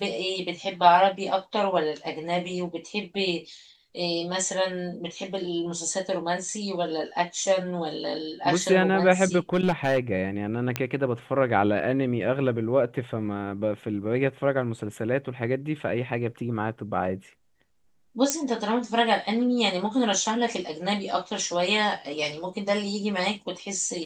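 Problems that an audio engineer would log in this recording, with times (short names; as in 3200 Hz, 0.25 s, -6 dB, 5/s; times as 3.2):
9.53–9.99 clipped -17 dBFS
10.76 pop -10 dBFS
18.3 pop -7 dBFS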